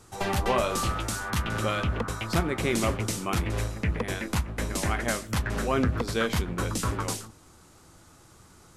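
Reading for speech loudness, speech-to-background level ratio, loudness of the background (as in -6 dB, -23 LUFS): -32.0 LUFS, -1.5 dB, -30.5 LUFS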